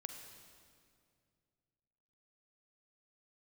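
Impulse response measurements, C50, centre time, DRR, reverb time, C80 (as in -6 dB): 5.5 dB, 45 ms, 5.0 dB, 2.2 s, 6.5 dB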